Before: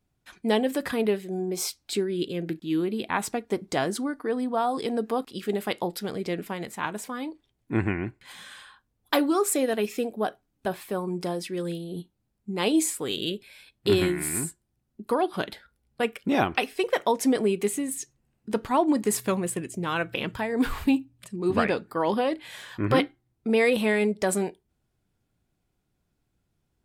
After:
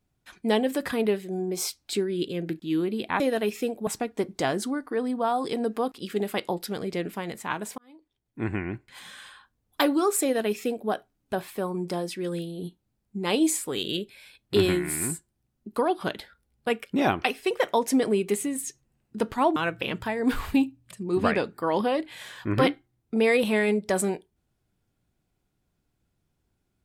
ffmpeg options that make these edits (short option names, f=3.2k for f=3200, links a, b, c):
-filter_complex "[0:a]asplit=5[a][b][c][d][e];[a]atrim=end=3.202[f];[b]atrim=start=9.558:end=10.232[g];[c]atrim=start=3.198:end=7.11,asetpts=PTS-STARTPTS,afade=t=out:st=3.908:d=0.004:c=hsin[h];[d]atrim=start=7.11:end=18.892,asetpts=PTS-STARTPTS,afade=t=in:d=1.12[i];[e]atrim=start=19.888[j];[f][g]acrossfade=d=0.004:c1=hsin:c2=hsin[k];[h][i]concat=n=2:v=0:a=1[l];[k][l]acrossfade=d=0.004:c1=hsin:c2=hsin[m];[m][j]acrossfade=d=0.004:c1=hsin:c2=hsin"